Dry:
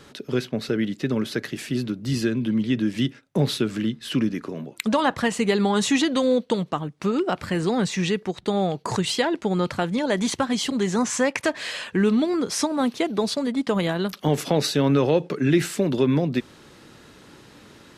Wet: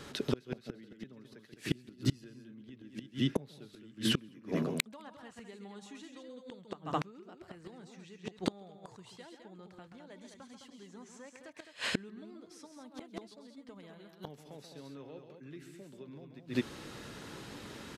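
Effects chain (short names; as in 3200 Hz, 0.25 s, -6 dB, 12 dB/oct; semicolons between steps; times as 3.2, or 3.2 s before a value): loudspeakers at several distances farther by 46 m -8 dB, 72 m -7 dB; flipped gate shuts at -17 dBFS, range -30 dB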